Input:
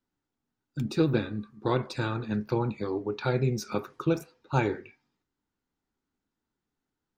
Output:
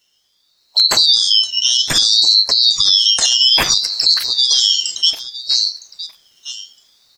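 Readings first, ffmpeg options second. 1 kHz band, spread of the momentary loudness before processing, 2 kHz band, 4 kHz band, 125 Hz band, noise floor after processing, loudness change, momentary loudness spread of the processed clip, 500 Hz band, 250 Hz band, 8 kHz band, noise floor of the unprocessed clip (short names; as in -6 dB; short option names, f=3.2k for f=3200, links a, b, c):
+4.5 dB, 8 LU, +11.5 dB, +37.5 dB, n/a, -62 dBFS, +19.0 dB, 20 LU, -5.5 dB, -9.0 dB, +32.0 dB, under -85 dBFS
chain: -af "afftfilt=real='real(if(lt(b,736),b+184*(1-2*mod(floor(b/184),2)),b),0)':imag='imag(if(lt(b,736),b+184*(1-2*mod(floor(b/184),2)),b),0)':win_size=2048:overlap=0.75,equalizer=f=110:w=6.8:g=-7,aecho=1:1:962|1924:0.0891|0.0169,acompressor=threshold=-34dB:ratio=20,adynamicequalizer=threshold=0.00178:dfrequency=1600:dqfactor=0.79:tfrequency=1600:tqfactor=0.79:attack=5:release=100:ratio=0.375:range=2:mode=boostabove:tftype=bell,highpass=76,bandreject=f=2.1k:w=21,dynaudnorm=f=580:g=3:m=9dB,alimiter=level_in=25dB:limit=-1dB:release=50:level=0:latency=1,aeval=exprs='val(0)*sin(2*PI*680*n/s+680*0.85/0.61*sin(2*PI*0.61*n/s))':c=same"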